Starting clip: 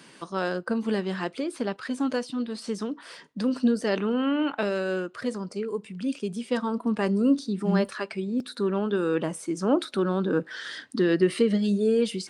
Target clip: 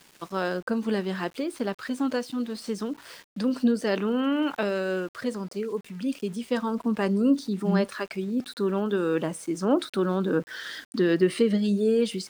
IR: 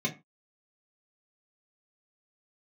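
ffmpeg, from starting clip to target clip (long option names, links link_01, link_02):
-af "aeval=exprs='val(0)*gte(abs(val(0)),0.00501)':channel_layout=same"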